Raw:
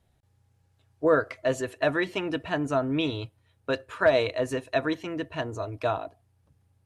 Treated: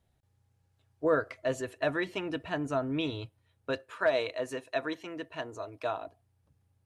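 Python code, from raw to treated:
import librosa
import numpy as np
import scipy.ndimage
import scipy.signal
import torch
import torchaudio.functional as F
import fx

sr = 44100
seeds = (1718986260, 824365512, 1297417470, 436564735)

y = fx.highpass(x, sr, hz=330.0, slope=6, at=(3.79, 6.02))
y = F.gain(torch.from_numpy(y), -5.0).numpy()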